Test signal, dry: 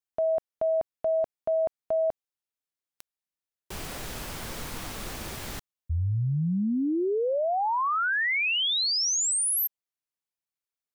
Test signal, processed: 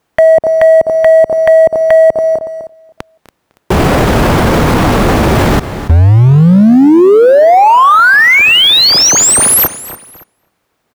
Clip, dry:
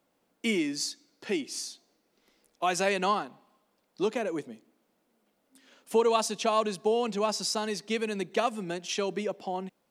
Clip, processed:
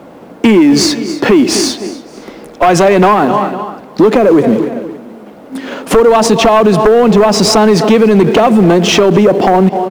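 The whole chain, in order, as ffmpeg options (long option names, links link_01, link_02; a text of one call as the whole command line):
ffmpeg -i in.wav -filter_complex "[0:a]acrusher=bits=3:mode=log:mix=0:aa=0.000001,highpass=frequency=74:poles=1,tiltshelf=frequency=1400:gain=5,asplit=2[link_01][link_02];[link_02]adelay=253,lowpass=frequency=4700:poles=1,volume=-23.5dB,asplit=2[link_03][link_04];[link_04]adelay=253,lowpass=frequency=4700:poles=1,volume=0.32[link_05];[link_03][link_05]amix=inputs=2:normalize=0[link_06];[link_01][link_06]amix=inputs=2:normalize=0,acompressor=threshold=-27dB:ratio=6:attack=7.7:release=384:knee=1:detection=peak,asplit=2[link_07][link_08];[link_08]aecho=0:1:283|566:0.0794|0.0262[link_09];[link_07][link_09]amix=inputs=2:normalize=0,acontrast=31,aeval=exprs='0.282*sin(PI/2*2.82*val(0)/0.282)':channel_layout=same,highshelf=frequency=3700:gain=-11.5,alimiter=level_in=19.5dB:limit=-1dB:release=50:level=0:latency=1,volume=-1dB" out.wav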